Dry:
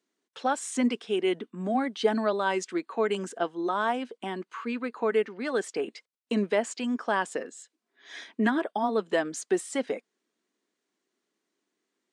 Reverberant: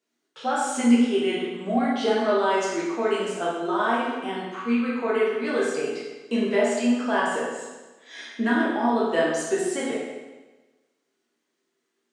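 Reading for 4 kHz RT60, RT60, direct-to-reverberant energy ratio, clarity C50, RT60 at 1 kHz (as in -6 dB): 1.1 s, 1.2 s, -7.0 dB, 0.0 dB, 1.2 s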